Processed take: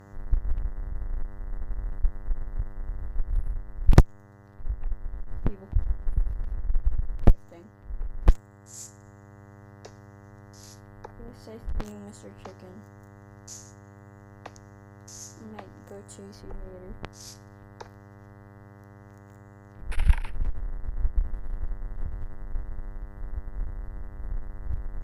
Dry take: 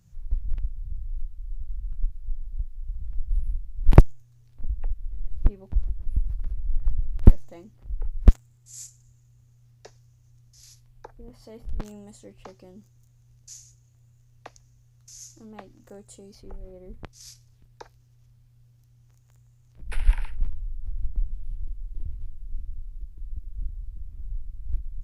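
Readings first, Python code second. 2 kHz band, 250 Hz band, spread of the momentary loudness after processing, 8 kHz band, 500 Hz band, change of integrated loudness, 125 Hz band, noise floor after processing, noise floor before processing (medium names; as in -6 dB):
+2.0 dB, -2.0 dB, 22 LU, no reading, -1.5 dB, -3.5 dB, -2.5 dB, -50 dBFS, -58 dBFS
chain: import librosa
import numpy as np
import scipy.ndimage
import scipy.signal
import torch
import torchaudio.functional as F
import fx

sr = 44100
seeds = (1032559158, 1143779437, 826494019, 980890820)

y = fx.dmg_buzz(x, sr, base_hz=100.0, harmonics=20, level_db=-50.0, tilt_db=-5, odd_only=False)
y = fx.rider(y, sr, range_db=3, speed_s=2.0)
y = fx.cheby_harmonics(y, sr, harmonics=(4, 5), levels_db=(-8, -26), full_scale_db=-1.0)
y = F.gain(torch.from_numpy(y), -4.0).numpy()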